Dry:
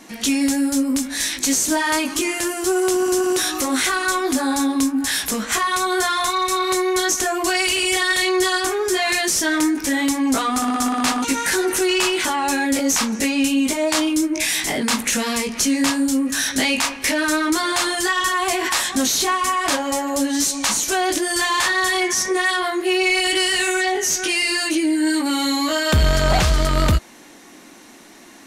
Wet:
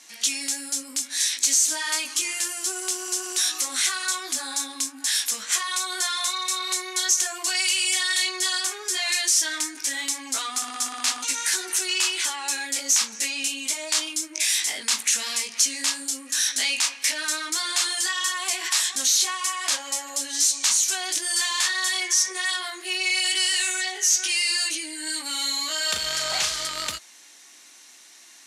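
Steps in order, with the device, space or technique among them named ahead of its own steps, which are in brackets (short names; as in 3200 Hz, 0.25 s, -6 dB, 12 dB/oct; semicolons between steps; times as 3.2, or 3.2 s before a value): 25.77–26.68 doubler 37 ms -5.5 dB; piezo pickup straight into a mixer (LPF 7200 Hz 12 dB/oct; differentiator); gain +4.5 dB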